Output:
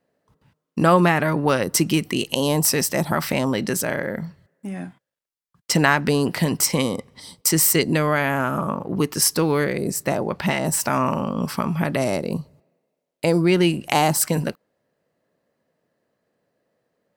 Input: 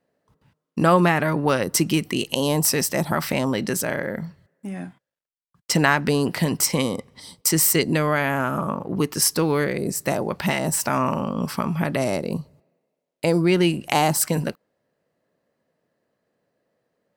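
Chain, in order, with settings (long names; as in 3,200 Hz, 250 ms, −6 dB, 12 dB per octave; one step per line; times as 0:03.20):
0:10.02–0:10.64: high-shelf EQ 5,200 Hz → 7,800 Hz −8 dB
level +1 dB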